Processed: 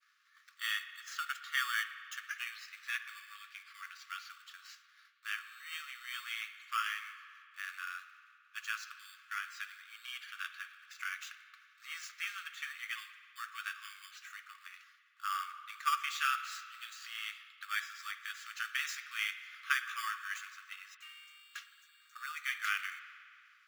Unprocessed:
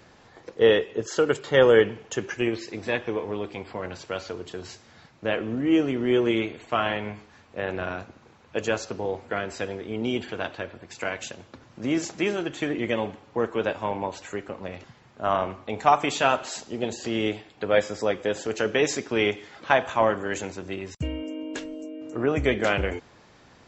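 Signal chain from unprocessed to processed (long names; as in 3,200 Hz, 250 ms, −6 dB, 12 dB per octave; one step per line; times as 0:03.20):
running median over 5 samples
downward expander −48 dBFS
in parallel at −10 dB: decimation without filtering 11×
on the sum: linear-phase brick-wall high-pass 1,100 Hz
spring reverb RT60 2.4 s, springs 52 ms, chirp 25 ms, DRR 11 dB
level −7.5 dB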